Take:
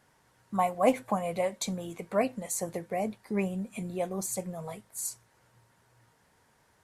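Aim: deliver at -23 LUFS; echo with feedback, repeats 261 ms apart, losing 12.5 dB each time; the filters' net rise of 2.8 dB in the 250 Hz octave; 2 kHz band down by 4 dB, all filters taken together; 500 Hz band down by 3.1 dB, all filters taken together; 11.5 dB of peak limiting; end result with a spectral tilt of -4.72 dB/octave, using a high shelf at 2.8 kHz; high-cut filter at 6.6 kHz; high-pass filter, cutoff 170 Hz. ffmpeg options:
-af "highpass=170,lowpass=6600,equalizer=f=250:t=o:g=6.5,equalizer=f=500:t=o:g=-5,equalizer=f=2000:t=o:g=-7.5,highshelf=f=2800:g=6.5,alimiter=limit=0.0794:level=0:latency=1,aecho=1:1:261|522|783:0.237|0.0569|0.0137,volume=3.76"

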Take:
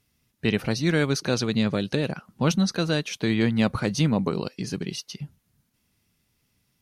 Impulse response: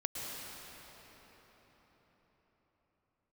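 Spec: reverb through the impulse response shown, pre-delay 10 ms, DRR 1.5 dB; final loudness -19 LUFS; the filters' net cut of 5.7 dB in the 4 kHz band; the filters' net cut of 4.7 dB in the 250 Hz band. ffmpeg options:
-filter_complex "[0:a]equalizer=f=250:t=o:g=-6.5,equalizer=f=4000:t=o:g=-7,asplit=2[s0][s1];[1:a]atrim=start_sample=2205,adelay=10[s2];[s1][s2]afir=irnorm=-1:irlink=0,volume=0.596[s3];[s0][s3]amix=inputs=2:normalize=0,volume=2.24"

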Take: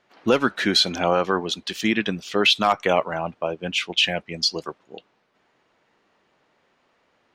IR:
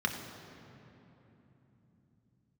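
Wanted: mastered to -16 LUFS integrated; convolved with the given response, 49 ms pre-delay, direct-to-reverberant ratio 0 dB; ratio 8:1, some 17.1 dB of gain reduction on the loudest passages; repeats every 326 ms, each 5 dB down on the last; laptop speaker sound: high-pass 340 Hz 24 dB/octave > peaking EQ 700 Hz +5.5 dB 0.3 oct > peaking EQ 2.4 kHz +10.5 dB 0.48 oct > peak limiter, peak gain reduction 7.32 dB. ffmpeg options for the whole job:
-filter_complex "[0:a]acompressor=threshold=0.0251:ratio=8,aecho=1:1:326|652|978|1304|1630|1956|2282:0.562|0.315|0.176|0.0988|0.0553|0.031|0.0173,asplit=2[s0][s1];[1:a]atrim=start_sample=2205,adelay=49[s2];[s1][s2]afir=irnorm=-1:irlink=0,volume=0.422[s3];[s0][s3]amix=inputs=2:normalize=0,highpass=f=340:w=0.5412,highpass=f=340:w=1.3066,equalizer=f=700:t=o:w=0.3:g=5.5,equalizer=f=2400:t=o:w=0.48:g=10.5,volume=5.62,alimiter=limit=0.501:level=0:latency=1"

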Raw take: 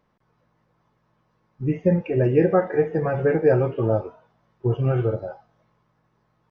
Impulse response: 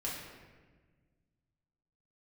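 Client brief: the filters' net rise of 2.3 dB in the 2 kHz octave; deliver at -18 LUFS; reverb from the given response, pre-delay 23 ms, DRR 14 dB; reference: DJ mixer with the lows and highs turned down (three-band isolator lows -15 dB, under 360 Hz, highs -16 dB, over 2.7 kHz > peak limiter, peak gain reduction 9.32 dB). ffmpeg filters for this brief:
-filter_complex "[0:a]equalizer=f=2000:t=o:g=4.5,asplit=2[s0][s1];[1:a]atrim=start_sample=2205,adelay=23[s2];[s1][s2]afir=irnorm=-1:irlink=0,volume=0.15[s3];[s0][s3]amix=inputs=2:normalize=0,acrossover=split=360 2700:gain=0.178 1 0.158[s4][s5][s6];[s4][s5][s6]amix=inputs=3:normalize=0,volume=3.55,alimiter=limit=0.447:level=0:latency=1"

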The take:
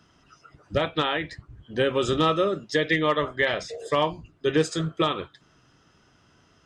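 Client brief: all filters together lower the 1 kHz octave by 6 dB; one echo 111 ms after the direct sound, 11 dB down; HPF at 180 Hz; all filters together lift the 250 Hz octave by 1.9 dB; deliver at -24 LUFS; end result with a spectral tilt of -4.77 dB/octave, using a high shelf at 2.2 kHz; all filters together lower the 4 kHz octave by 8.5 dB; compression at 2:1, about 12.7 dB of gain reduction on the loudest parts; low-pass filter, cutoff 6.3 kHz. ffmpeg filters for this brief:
-af "highpass=180,lowpass=6300,equalizer=f=250:t=o:g=4.5,equalizer=f=1000:t=o:g=-6,highshelf=f=2200:g=-6.5,equalizer=f=4000:t=o:g=-4.5,acompressor=threshold=0.00794:ratio=2,aecho=1:1:111:0.282,volume=5.01"

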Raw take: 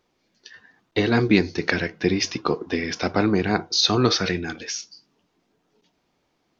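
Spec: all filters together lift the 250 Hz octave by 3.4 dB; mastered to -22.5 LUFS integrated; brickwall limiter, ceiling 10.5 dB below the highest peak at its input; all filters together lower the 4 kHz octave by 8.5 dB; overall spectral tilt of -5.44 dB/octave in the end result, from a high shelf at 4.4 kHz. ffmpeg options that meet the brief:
-af "equalizer=f=250:t=o:g=4.5,equalizer=f=4000:t=o:g=-7.5,highshelf=f=4400:g=-4.5,volume=1.41,alimiter=limit=0.299:level=0:latency=1"

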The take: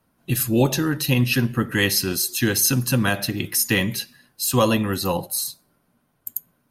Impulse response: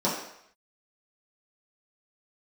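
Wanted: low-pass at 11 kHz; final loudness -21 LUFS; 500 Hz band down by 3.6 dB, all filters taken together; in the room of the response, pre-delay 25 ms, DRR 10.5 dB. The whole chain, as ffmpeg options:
-filter_complex "[0:a]lowpass=11000,equalizer=f=500:t=o:g=-4.5,asplit=2[s0][s1];[1:a]atrim=start_sample=2205,adelay=25[s2];[s1][s2]afir=irnorm=-1:irlink=0,volume=0.0708[s3];[s0][s3]amix=inputs=2:normalize=0,volume=1.06"

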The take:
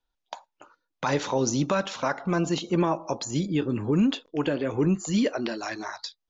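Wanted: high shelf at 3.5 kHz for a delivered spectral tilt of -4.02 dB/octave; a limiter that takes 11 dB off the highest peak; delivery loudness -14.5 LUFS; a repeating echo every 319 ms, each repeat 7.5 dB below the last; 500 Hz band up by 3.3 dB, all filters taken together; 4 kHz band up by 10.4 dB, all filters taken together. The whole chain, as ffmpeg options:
-af "equalizer=f=500:t=o:g=4,highshelf=f=3500:g=6.5,equalizer=f=4000:t=o:g=8.5,alimiter=limit=0.15:level=0:latency=1,aecho=1:1:319|638|957|1276|1595:0.422|0.177|0.0744|0.0312|0.0131,volume=3.55"

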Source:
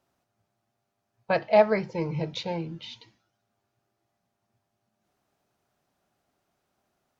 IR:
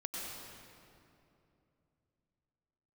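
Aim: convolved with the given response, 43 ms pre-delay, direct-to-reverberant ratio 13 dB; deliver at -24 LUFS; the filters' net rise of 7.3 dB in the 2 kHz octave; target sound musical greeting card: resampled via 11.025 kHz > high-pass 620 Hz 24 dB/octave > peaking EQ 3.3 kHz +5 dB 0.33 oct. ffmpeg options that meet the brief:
-filter_complex "[0:a]equalizer=f=2000:t=o:g=8.5,asplit=2[s0][s1];[1:a]atrim=start_sample=2205,adelay=43[s2];[s1][s2]afir=irnorm=-1:irlink=0,volume=0.188[s3];[s0][s3]amix=inputs=2:normalize=0,aresample=11025,aresample=44100,highpass=f=620:w=0.5412,highpass=f=620:w=1.3066,equalizer=f=3300:t=o:w=0.33:g=5,volume=1.41"

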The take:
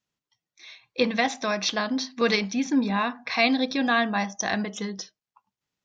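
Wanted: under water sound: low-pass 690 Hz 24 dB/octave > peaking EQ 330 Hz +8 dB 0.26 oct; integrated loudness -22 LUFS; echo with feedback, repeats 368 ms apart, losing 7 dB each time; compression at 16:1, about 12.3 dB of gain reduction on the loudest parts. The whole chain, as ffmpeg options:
-af "acompressor=threshold=0.0355:ratio=16,lowpass=f=690:w=0.5412,lowpass=f=690:w=1.3066,equalizer=f=330:t=o:w=0.26:g=8,aecho=1:1:368|736|1104|1472|1840:0.447|0.201|0.0905|0.0407|0.0183,volume=4.73"

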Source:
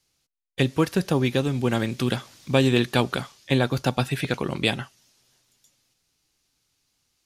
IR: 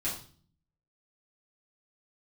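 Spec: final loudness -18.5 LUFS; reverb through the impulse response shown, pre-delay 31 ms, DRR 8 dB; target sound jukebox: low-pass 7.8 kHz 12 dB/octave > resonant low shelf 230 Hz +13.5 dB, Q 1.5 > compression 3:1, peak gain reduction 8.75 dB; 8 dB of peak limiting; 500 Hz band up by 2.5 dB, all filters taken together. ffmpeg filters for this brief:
-filter_complex "[0:a]equalizer=f=500:t=o:g=6,alimiter=limit=0.299:level=0:latency=1,asplit=2[s0][s1];[1:a]atrim=start_sample=2205,adelay=31[s2];[s1][s2]afir=irnorm=-1:irlink=0,volume=0.237[s3];[s0][s3]amix=inputs=2:normalize=0,lowpass=7800,lowshelf=f=230:t=q:w=1.5:g=13.5,acompressor=threshold=0.158:ratio=3,volume=1.12"

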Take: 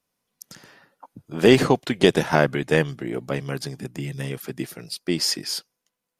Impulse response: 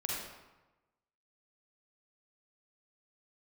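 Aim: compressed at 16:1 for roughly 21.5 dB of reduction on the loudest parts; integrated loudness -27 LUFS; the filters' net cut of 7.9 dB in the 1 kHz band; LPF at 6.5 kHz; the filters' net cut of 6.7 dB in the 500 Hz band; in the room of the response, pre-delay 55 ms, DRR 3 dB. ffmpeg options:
-filter_complex "[0:a]lowpass=6500,equalizer=f=500:t=o:g=-7.5,equalizer=f=1000:t=o:g=-8,acompressor=threshold=0.0178:ratio=16,asplit=2[s0][s1];[1:a]atrim=start_sample=2205,adelay=55[s2];[s1][s2]afir=irnorm=-1:irlink=0,volume=0.473[s3];[s0][s3]amix=inputs=2:normalize=0,volume=4.22"

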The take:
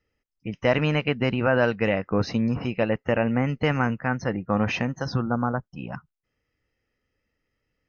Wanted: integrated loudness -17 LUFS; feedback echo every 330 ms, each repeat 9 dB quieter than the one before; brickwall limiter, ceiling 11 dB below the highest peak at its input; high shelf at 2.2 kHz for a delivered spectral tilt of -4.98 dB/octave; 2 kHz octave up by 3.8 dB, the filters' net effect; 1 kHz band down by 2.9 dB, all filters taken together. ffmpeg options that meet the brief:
-af "equalizer=f=1000:t=o:g=-6.5,equalizer=f=2000:t=o:g=5,highshelf=f=2200:g=3.5,alimiter=limit=0.119:level=0:latency=1,aecho=1:1:330|660|990|1320:0.355|0.124|0.0435|0.0152,volume=4.22"

